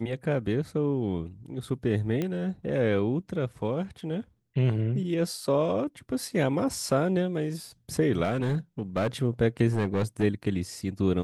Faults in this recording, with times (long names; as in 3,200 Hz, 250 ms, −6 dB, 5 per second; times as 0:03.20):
0:02.22: click −17 dBFS
0:08.23–0:09.07: clipping −22.5 dBFS
0:09.70–0:10.24: clipping −21.5 dBFS